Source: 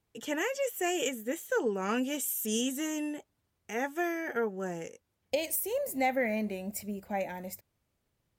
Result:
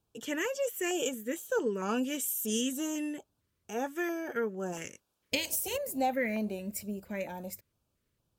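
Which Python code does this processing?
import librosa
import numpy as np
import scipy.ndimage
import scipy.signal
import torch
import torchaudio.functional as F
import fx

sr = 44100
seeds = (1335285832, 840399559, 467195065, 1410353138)

y = fx.spec_clip(x, sr, under_db=17, at=(4.72, 5.76), fade=0.02)
y = fx.filter_lfo_notch(y, sr, shape='square', hz=2.2, low_hz=770.0, high_hz=2000.0, q=1.7)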